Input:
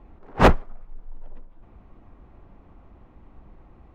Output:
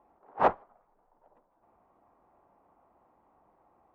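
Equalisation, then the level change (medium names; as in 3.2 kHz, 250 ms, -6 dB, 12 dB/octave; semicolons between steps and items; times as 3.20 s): band-pass filter 820 Hz, Q 1.7; -3.5 dB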